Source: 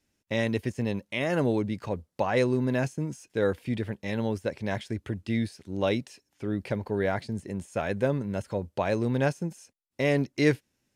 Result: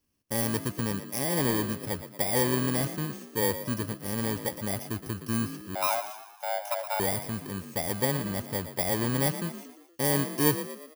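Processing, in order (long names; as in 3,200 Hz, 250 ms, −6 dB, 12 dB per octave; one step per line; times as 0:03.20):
samples in bit-reversed order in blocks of 32 samples
0:05.75–0:07.00: frequency shifter +460 Hz
echo with shifted repeats 117 ms, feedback 49%, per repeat +42 Hz, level −11.5 dB
level −1.5 dB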